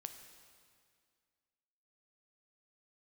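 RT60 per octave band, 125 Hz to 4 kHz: 2.1, 2.3, 2.1, 2.1, 2.0, 1.9 seconds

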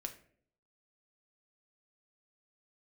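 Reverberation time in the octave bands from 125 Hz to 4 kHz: 0.80, 0.75, 0.70, 0.45, 0.50, 0.35 seconds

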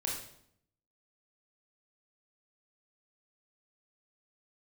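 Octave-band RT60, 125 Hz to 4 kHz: 0.95, 0.90, 0.70, 0.65, 0.60, 0.60 seconds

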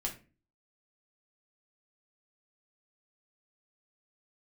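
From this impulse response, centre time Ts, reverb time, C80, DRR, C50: 16 ms, 0.35 s, 17.0 dB, −1.0 dB, 11.5 dB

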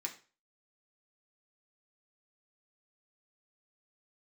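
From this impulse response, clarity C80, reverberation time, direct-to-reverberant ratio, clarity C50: 17.0 dB, 0.35 s, 0.0 dB, 12.0 dB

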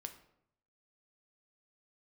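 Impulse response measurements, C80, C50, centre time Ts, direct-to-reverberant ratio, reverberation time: 14.5 dB, 11.5 dB, 10 ms, 6.0 dB, 0.75 s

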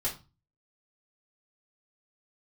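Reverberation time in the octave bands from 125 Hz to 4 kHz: 0.55, 0.40, 0.30, 0.30, 0.25, 0.25 seconds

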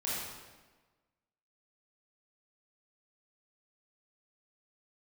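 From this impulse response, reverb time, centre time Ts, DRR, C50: 1.3 s, 99 ms, −8.0 dB, −3.0 dB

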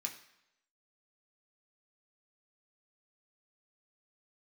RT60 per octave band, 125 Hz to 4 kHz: 0.70, 0.75, 0.85, 0.85, 0.85, 0.80 seconds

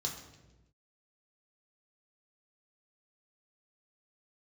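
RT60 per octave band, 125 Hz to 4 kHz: 1.4, 1.3, 1.2, 0.90, 0.90, 0.85 seconds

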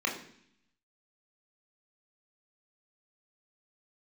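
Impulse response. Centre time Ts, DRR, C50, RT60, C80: 25 ms, −1.0 dB, 8.5 dB, 0.65 s, 11.5 dB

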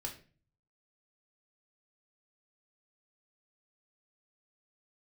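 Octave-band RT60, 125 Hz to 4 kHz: 0.85, 0.55, 0.45, 0.35, 0.40, 0.30 seconds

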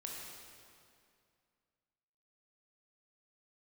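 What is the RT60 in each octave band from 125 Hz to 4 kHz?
2.6, 2.5, 2.4, 2.3, 2.1, 1.9 seconds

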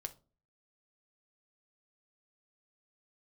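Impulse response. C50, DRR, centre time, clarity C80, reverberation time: 17.5 dB, 6.5 dB, 4 ms, 25.0 dB, 0.35 s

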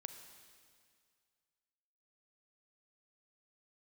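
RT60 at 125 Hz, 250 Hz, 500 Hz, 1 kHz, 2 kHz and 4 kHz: 2.2, 2.0, 2.1, 2.1, 2.1, 2.1 seconds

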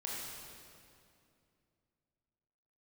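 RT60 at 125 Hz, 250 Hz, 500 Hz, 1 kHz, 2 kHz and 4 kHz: 3.2, 3.1, 2.7, 2.3, 2.1, 2.0 seconds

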